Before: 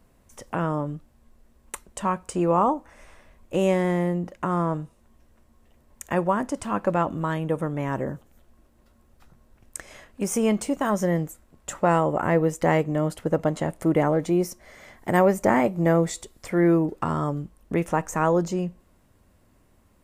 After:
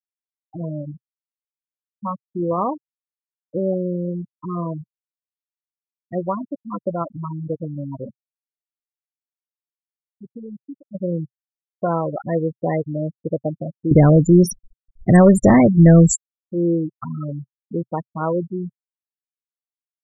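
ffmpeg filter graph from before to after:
-filter_complex "[0:a]asettb=1/sr,asplit=3[a][b][c];[a]atrim=end=8.104[d];[b]atrim=start=8.1:end=10.95,asetpts=PTS-STARTPTS,afade=t=in:d=0.004:c=qsin,afade=t=out:st=2.846:d=0.004:c=qsin,acrossover=split=4500[e][f];[f]adelay=140[g];[e][g]amix=inputs=2:normalize=0,atrim=end_sample=125685,acompressor=threshold=-26dB:ratio=3:attack=3.2:release=140:knee=1:detection=peak,tremolo=f=160:d=0.621[h];[c]atrim=start=10.946[i];[d][h]acrossfade=d=0.004:c1=hsin:c2=qsin[j];[j][i]acrossfade=d=0.004:c1=qsin:c2=hsin,asettb=1/sr,asplit=3[k][l][m];[k]atrim=end=13.914[n];[l]atrim=start=13.91:end=16.16,asetpts=PTS-STARTPTS,afade=t=in:d=0.004:c=qsin,afade=t=out:st=2.246:d=0.004:c=qsin,bass=f=250:g=11,treble=f=4k:g=10,acontrast=80[o];[m]atrim=start=16.156[p];[n][o]acrossfade=d=0.004:c1=hsin:c2=qsin[q];[q][p]acrossfade=d=0.004:c1=qsin:c2=hsin,bandreject=f=880:w=12,afftfilt=real='re*gte(hypot(re,im),0.224)':imag='im*gte(hypot(re,im),0.224)':win_size=1024:overlap=0.75,equalizer=f=130:t=o:w=0.51:g=2"

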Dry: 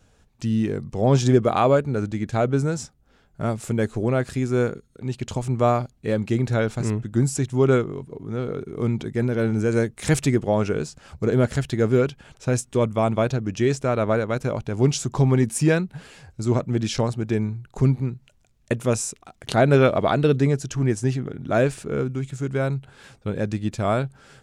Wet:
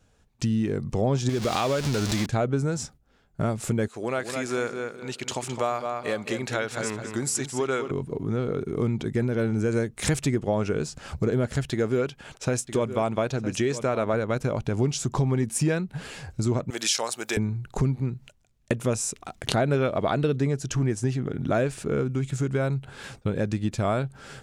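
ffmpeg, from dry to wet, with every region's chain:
-filter_complex "[0:a]asettb=1/sr,asplit=3[a][b][c];[a]atrim=end=1.294[d];[b]atrim=start=1.29:end=2.26,asetpts=PTS-STARTPTS,afade=t=in:d=0.004:c=qsin,afade=t=out:st=0.966:d=0.004:c=qsin,aeval=exprs='val(0)+0.5*0.0473*sgn(val(0))':c=same,equalizer=f=5.1k:w=0.56:g=14.5,acompressor=threshold=-22dB:ratio=2.5:attack=3.2:release=140:knee=1:detection=peak[e];[c]atrim=start=2.256[f];[d][e]acrossfade=d=0.004:c1=hsin:c2=qsin[g];[g][f]acrossfade=d=0.004:c1=qsin:c2=hsin,asettb=1/sr,asplit=3[h][i][j];[h]atrim=end=3.884[k];[i]atrim=start=3.88:end=7.91,asetpts=PTS-STARTPTS,afade=t=in:d=0.004:c=qsin,afade=t=out:st=4.026:d=0.004:c=qsin,highpass=f=1.1k:p=1,asplit=2[l][m];[m]adelay=212,lowpass=f=4.2k:p=1,volume=-8dB,asplit=2[n][o];[o]adelay=212,lowpass=f=4.2k:p=1,volume=0.27,asplit=2[p][q];[q]adelay=212,lowpass=f=4.2k:p=1,volume=0.27[r];[l][n][p][r]amix=inputs=4:normalize=0,atrim=end_sample=177723[s];[j]atrim=start=7.906[t];[k][s]acrossfade=d=0.004:c1=hsin:c2=qsin[u];[u][t]acrossfade=d=0.004:c1=qsin:c2=hsin,asettb=1/sr,asplit=3[v][w][x];[v]atrim=end=11.714[y];[w]atrim=start=11.71:end=14.14,asetpts=PTS-STARTPTS,afade=t=in:d=0.004:c=qsin,afade=t=out:st=2.426:d=0.004:c=qsin,lowshelf=f=190:g=-8,aecho=1:1:960:0.178,atrim=end_sample=107163[z];[x]atrim=start=14.136[aa];[y][z]acrossfade=d=0.004:c1=hsin:c2=qsin[ab];[ab][aa]acrossfade=d=0.004:c1=qsin:c2=hsin,asettb=1/sr,asplit=3[ac][ad][ae];[ac]atrim=end=16.704[af];[ad]atrim=start=16.7:end=17.37,asetpts=PTS-STARTPTS,afade=t=in:d=0.004:c=qsin,afade=t=out:st=0.666:d=0.004:c=qsin,highpass=670,aemphasis=mode=production:type=75kf[ag];[ae]atrim=start=17.366[ah];[af][ag]acrossfade=d=0.004:c1=hsin:c2=qsin[ai];[ai][ah]acrossfade=d=0.004:c1=qsin:c2=hsin,acompressor=threshold=-31dB:ratio=3,agate=range=-11dB:threshold=-53dB:ratio=16:detection=peak,volume=6.5dB"

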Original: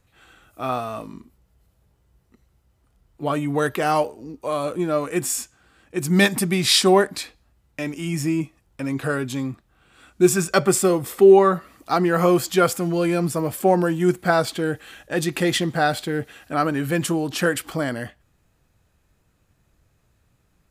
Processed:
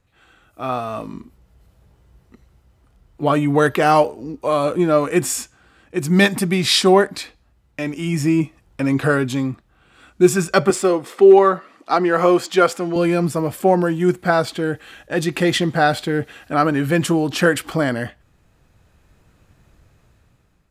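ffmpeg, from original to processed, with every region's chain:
-filter_complex "[0:a]asettb=1/sr,asplit=3[a][b][c];[a]atrim=end=10.704[d];[b]atrim=start=10.7:end=12.96,asetpts=PTS-STARTPTS,afade=t=in:d=0.004:c=qsin,afade=t=out:st=2.256:d=0.004:c=qsin,highpass=270,adynamicsmooth=sensitivity=4.5:basefreq=7.4k,asoftclip=type=hard:threshold=-6dB[e];[c]atrim=start=12.956[f];[d][e]acrossfade=d=0.004:c1=hsin:c2=qsin[g];[g][f]acrossfade=d=0.004:c1=qsin:c2=hsin,highshelf=f=7k:g=-8,dynaudnorm=f=410:g=5:m=11.5dB,volume=-1dB"

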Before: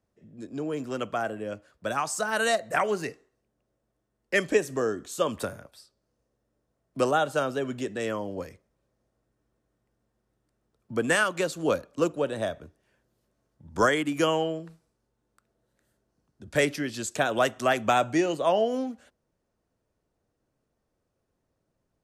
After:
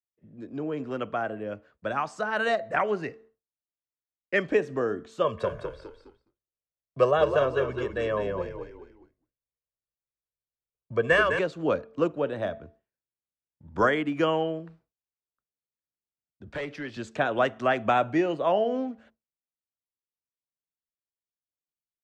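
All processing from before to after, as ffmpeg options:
-filter_complex "[0:a]asettb=1/sr,asplit=3[a][b][c];[a]atrim=end=5.244[d];[b]atrim=start=5.24:end=11.39,asetpts=PTS-STARTPTS,afade=t=in:d=0.004:c=qsin,afade=t=out:st=6.146:d=0.004:c=qsin,lowpass=11k,aecho=1:1:1.8:0.8,atrim=end_sample=271215,asplit=5[e][f][g][h][i];[f]adelay=206,afreqshift=-54,volume=-6.5dB[j];[g]adelay=412,afreqshift=-108,volume=-15.6dB[k];[h]adelay=618,afreqshift=-162,volume=-24.7dB[l];[i]adelay=824,afreqshift=-216,volume=-33.9dB[m];[e][j][k][l][m]amix=inputs=5:normalize=0,atrim=end_sample=271215[n];[c]atrim=start=11.386[o];[d][n]acrossfade=d=0.004:c1=hsin:c2=qsin[p];[p][o]acrossfade=d=0.004:c1=qsin:c2=hsin,asettb=1/sr,asplit=3[q][r][s];[q]atrim=end=16.504[t];[r]atrim=start=16.5:end=16.97,asetpts=PTS-STARTPTS,afade=t=in:d=0.004:c=qsin,afade=t=out:st=0.466:d=0.004:c=qsin,acrossover=split=190|420[u][v][w];[u]acompressor=threshold=-44dB:ratio=4[x];[v]acompressor=threshold=-42dB:ratio=4[y];[w]acompressor=threshold=-28dB:ratio=4[z];[x][y][z]amix=inputs=3:normalize=0,asoftclip=type=hard:threshold=-28.5dB[aa];[s]atrim=start=16.966[ab];[t][aa]acrossfade=d=0.004:c1=hsin:c2=qsin[ac];[ac][ab]acrossfade=d=0.004:c1=qsin:c2=hsin,lowpass=2.7k,bandreject=f=222.6:t=h:w=4,bandreject=f=445.2:t=h:w=4,bandreject=f=667.8:t=h:w=4,agate=range=-33dB:threshold=-52dB:ratio=3:detection=peak"

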